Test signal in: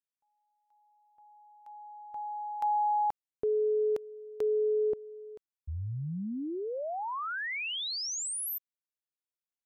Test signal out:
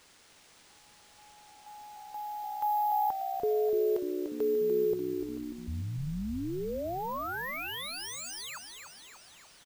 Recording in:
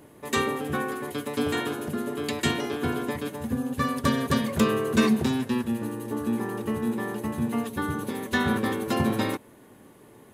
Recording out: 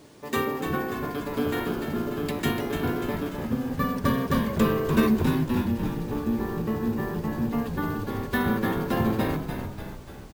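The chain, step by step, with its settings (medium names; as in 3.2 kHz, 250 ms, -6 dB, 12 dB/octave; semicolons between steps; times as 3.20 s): treble shelf 2.6 kHz -8 dB; word length cut 10-bit, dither triangular; careless resampling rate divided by 3×, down none, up hold; on a send: frequency-shifting echo 294 ms, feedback 57%, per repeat -64 Hz, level -7 dB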